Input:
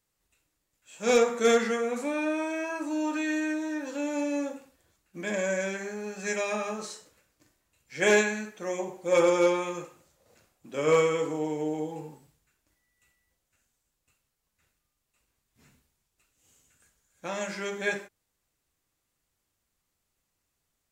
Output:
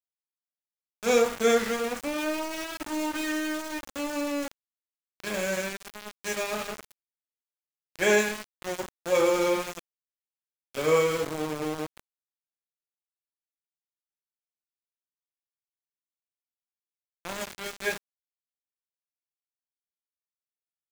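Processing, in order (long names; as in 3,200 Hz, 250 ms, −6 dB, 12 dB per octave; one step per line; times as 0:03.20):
0:08.12–0:09.73: hum removal 86.62 Hz, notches 37
centre clipping without the shift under −29.5 dBFS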